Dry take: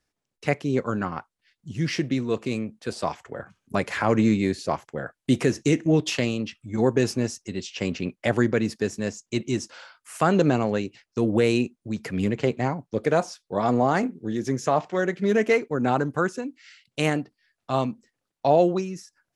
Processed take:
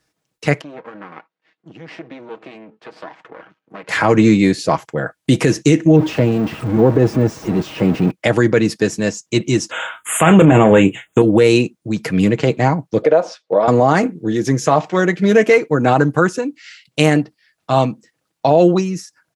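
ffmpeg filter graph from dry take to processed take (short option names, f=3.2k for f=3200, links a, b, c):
-filter_complex "[0:a]asettb=1/sr,asplit=3[a][b][c];[a]atrim=end=0.614[d];[b]atrim=start=0.61:end=3.89,asetpts=PTS-STARTPTS,afade=t=in:d=0.004:c=qsin,afade=t=out:st=3.276:d=0.004:c=qsin,acompressor=threshold=-39dB:ratio=2.5:attack=3.2:release=140:knee=1:detection=peak,aeval=exprs='max(val(0),0)':c=same,highpass=240,lowpass=2.5k[e];[c]atrim=start=3.886[f];[d][e]acrossfade=d=0.004:c1=hsin:c2=qsin[g];[g][f]acrossfade=d=0.004:c1=qsin:c2=hsin,asettb=1/sr,asplit=3[h][i][j];[h]atrim=end=5.964[k];[i]atrim=start=5.96:end=8.11,asetpts=PTS-STARTPTS,afade=t=in:d=0.004:c=qsin,afade=t=out:st=2.146:d=0.004:c=qsin,aeval=exprs='val(0)+0.5*0.0531*sgn(val(0))':c=same,deesser=1,highshelf=f=2.5k:g=-9.5[l];[j]atrim=start=8.106[m];[k][l]acrossfade=d=0.004:c1=hsin:c2=qsin[n];[n][m]acrossfade=d=0.004:c1=qsin:c2=hsin,asettb=1/sr,asplit=3[o][p][q];[o]atrim=end=9.714[r];[p]atrim=start=9.71:end=11.22,asetpts=PTS-STARTPTS,afade=t=in:d=0.004:c=qsin,afade=t=out:st=1.506:d=0.004:c=qsin,aeval=exprs='0.447*sin(PI/2*2*val(0)/0.447)':c=same,asuperstop=centerf=4900:order=12:qfactor=1.6,asplit=2[s][t];[t]adelay=31,volume=-12dB[u];[s][u]amix=inputs=2:normalize=0,atrim=end_sample=66591[v];[q]atrim=start=11.216[w];[r][v]acrossfade=d=0.004:c1=hsin:c2=qsin[x];[x][w]acrossfade=d=0.004:c1=qsin:c2=hsin,asettb=1/sr,asplit=3[y][z][aa];[y]atrim=end=13.024[ab];[z]atrim=start=13.02:end=13.68,asetpts=PTS-STARTPTS,afade=t=in:d=0.004:c=qsin,afade=t=out:st=0.656:d=0.004:c=qsin,equalizer=f=560:w=2.3:g=12.5,acompressor=threshold=-21dB:ratio=4:attack=3.2:release=140:knee=1:detection=peak,highpass=230,lowpass=3.8k[ac];[aa]atrim=start=13.676[ad];[ab][ac]acrossfade=d=0.004:c1=hsin:c2=qsin[ae];[ae][ad]acrossfade=d=0.004:c1=qsin:c2=hsin,highpass=61,aecho=1:1:6.3:0.42,alimiter=level_in=11dB:limit=-1dB:release=50:level=0:latency=1,volume=-1dB"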